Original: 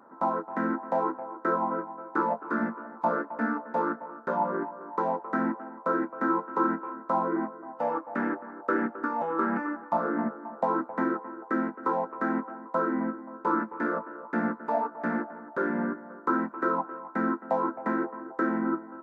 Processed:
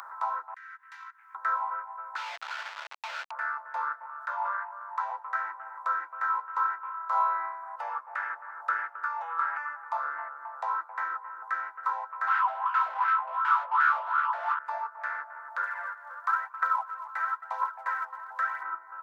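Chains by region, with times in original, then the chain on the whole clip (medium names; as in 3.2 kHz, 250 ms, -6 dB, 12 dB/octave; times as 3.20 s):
0.54–1.35 s: inverse Chebyshev band-stop 250–530 Hz, stop band 80 dB + gate -49 dBFS, range -12 dB + compression 3:1, threshold -55 dBFS
2.16–3.31 s: static phaser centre 1.7 kHz, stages 8 + Schmitt trigger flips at -41.5 dBFS + distance through air 180 m
4.06–5.11 s: Chebyshev high-pass 580 Hz, order 4 + decay stretcher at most 49 dB/s
6.91–7.76 s: high-pass 420 Hz + flutter echo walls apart 5.2 m, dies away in 0.62 s
12.27–14.59 s: peaking EQ 880 Hz +5.5 dB 1.9 oct + overdrive pedal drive 35 dB, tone 1.7 kHz, clips at -10.5 dBFS + wah-wah 2.7 Hz 600–1500 Hz, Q 4.9
15.63–18.63 s: phaser 1 Hz, delay 3.8 ms, feedback 49% + steep high-pass 460 Hz
whole clip: inverse Chebyshev high-pass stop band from 170 Hz, stop band 80 dB; upward compressor, threshold -35 dBFS; trim +2 dB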